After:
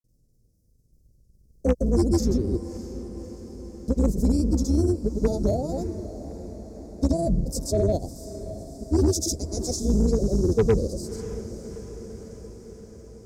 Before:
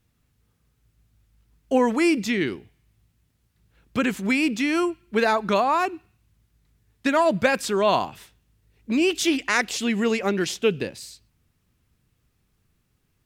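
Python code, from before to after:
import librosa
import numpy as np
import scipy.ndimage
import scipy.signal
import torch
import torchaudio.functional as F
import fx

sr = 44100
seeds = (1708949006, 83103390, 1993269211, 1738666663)

p1 = fx.octave_divider(x, sr, octaves=2, level_db=2.0)
p2 = fx.granulator(p1, sr, seeds[0], grain_ms=100.0, per_s=20.0, spray_ms=100.0, spread_st=0)
p3 = 10.0 ** (-15.0 / 20.0) * np.tanh(p2 / 10.0 ** (-15.0 / 20.0))
p4 = p2 + F.gain(torch.from_numpy(p3), -5.0).numpy()
p5 = scipy.signal.sosfilt(scipy.signal.ellip(3, 1.0, 40, [570.0, 5300.0], 'bandstop', fs=sr, output='sos'), p4)
p6 = fx.cheby_harmonics(p5, sr, harmonics=(5, 7), levels_db=(-18, -24), full_scale_db=-7.5)
p7 = p6 + fx.echo_diffused(p6, sr, ms=610, feedback_pct=64, wet_db=-13.5, dry=0)
y = F.gain(torch.from_numpy(p7), -3.0).numpy()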